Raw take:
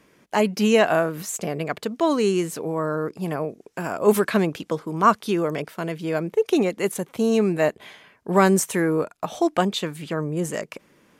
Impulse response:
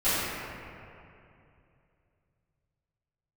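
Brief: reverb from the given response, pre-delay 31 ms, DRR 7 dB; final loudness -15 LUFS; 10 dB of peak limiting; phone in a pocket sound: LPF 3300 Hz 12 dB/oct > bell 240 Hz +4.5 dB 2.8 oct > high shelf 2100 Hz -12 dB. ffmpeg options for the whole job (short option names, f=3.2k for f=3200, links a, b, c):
-filter_complex "[0:a]alimiter=limit=-14dB:level=0:latency=1,asplit=2[a][b];[1:a]atrim=start_sample=2205,adelay=31[c];[b][c]afir=irnorm=-1:irlink=0,volume=-22dB[d];[a][d]amix=inputs=2:normalize=0,lowpass=3.3k,equalizer=f=240:t=o:w=2.8:g=4.5,highshelf=f=2.1k:g=-12,volume=7dB"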